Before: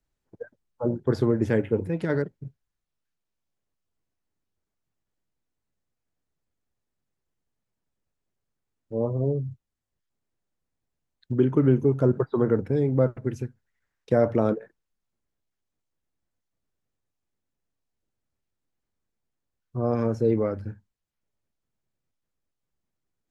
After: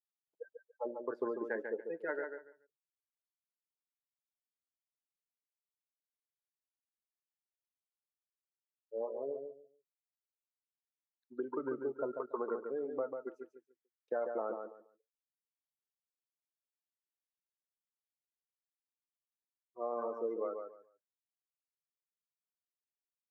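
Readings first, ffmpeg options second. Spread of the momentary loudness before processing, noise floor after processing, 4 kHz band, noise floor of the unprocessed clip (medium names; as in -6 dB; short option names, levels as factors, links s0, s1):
17 LU, under -85 dBFS, no reading, -83 dBFS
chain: -filter_complex "[0:a]highpass=840,highshelf=f=2300:g=-9.5,afftdn=nr=28:nf=-36,acompressor=threshold=0.0158:ratio=4,asplit=2[s0][s1];[s1]aecho=0:1:143|286|429:0.501|0.105|0.0221[s2];[s0][s2]amix=inputs=2:normalize=0,volume=1.26"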